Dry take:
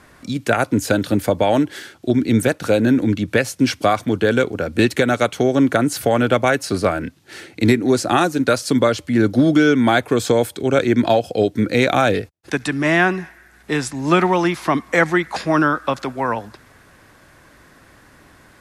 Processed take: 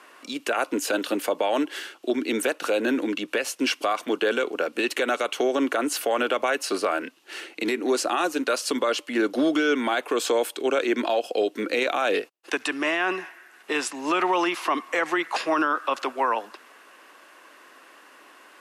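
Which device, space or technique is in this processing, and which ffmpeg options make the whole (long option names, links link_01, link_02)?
laptop speaker: -af "highpass=frequency=320:width=0.5412,highpass=frequency=320:width=1.3066,equalizer=frequency=1100:width_type=o:width=0.49:gain=5.5,equalizer=frequency=2800:width_type=o:width=0.28:gain=10,alimiter=limit=-11.5dB:level=0:latency=1:release=48,volume=-2.5dB"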